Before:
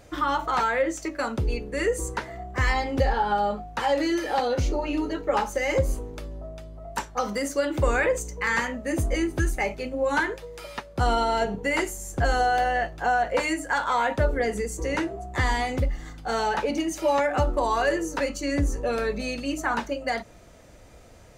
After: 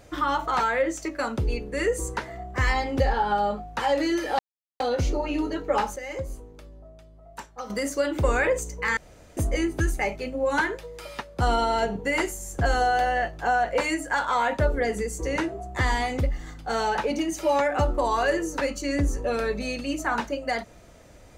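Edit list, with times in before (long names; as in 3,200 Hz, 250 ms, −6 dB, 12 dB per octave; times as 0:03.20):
0:04.39: splice in silence 0.41 s
0:05.55–0:07.29: clip gain −9.5 dB
0:08.56–0:08.96: fill with room tone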